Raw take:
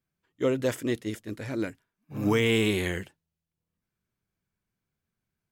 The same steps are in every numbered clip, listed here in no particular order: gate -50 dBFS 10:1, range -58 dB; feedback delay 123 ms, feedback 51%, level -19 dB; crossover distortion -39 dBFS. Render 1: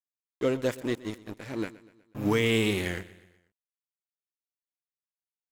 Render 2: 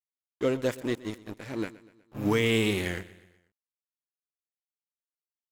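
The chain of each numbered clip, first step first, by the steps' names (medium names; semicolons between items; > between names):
crossover distortion > gate > feedback delay; gate > crossover distortion > feedback delay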